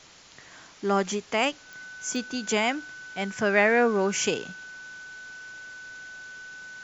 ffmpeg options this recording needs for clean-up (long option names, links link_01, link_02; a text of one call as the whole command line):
ffmpeg -i in.wav -af "adeclick=threshold=4,bandreject=frequency=1500:width=30,afwtdn=0.004" out.wav